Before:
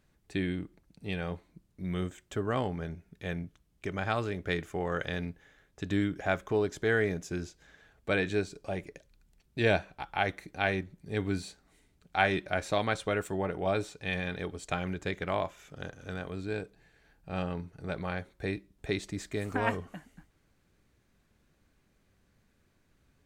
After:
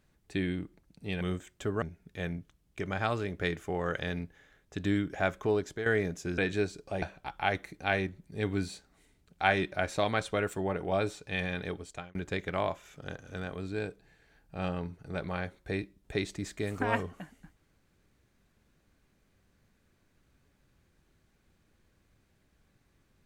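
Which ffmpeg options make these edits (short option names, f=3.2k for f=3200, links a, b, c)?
-filter_complex "[0:a]asplit=7[a][b][c][d][e][f][g];[a]atrim=end=1.212[h];[b]atrim=start=1.918:end=2.532[i];[c]atrim=start=2.878:end=6.92,asetpts=PTS-STARTPTS,afade=t=out:st=3.692:d=0.35:c=qsin:silence=0.281838[j];[d]atrim=start=6.92:end=7.442,asetpts=PTS-STARTPTS,afade=t=in:d=0.004:c=hsin:silence=0.281838[k];[e]atrim=start=8.148:end=8.792[l];[f]atrim=start=9.758:end=14.89,asetpts=PTS-STARTPTS,afade=t=out:st=4.692:d=0.44[m];[g]atrim=start=14.89,asetpts=PTS-STARTPTS,afade=t=in:d=0.004:c=hsin[n];[h][i]acrossfade=d=0.004:c1=hsin:c2=hsin[o];[j][k]concat=n=2:v=0:a=1[p];[o][p]acrossfade=d=0.004:c1=hsin:c2=hsin[q];[q][l]acrossfade=d=0.004:c1=hsin:c2=hsin[r];[m][n]concat=n=2:v=0:a=1[s];[r][s]acrossfade=d=0.004:c1=hsin:c2=hsin"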